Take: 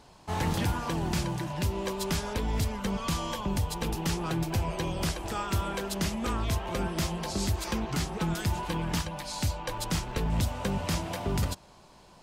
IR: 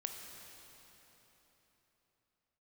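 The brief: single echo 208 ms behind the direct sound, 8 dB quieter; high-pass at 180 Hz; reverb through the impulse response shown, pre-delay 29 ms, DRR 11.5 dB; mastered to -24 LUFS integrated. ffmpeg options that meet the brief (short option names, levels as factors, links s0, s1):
-filter_complex "[0:a]highpass=180,aecho=1:1:208:0.398,asplit=2[s0][s1];[1:a]atrim=start_sample=2205,adelay=29[s2];[s1][s2]afir=irnorm=-1:irlink=0,volume=0.299[s3];[s0][s3]amix=inputs=2:normalize=0,volume=2.66"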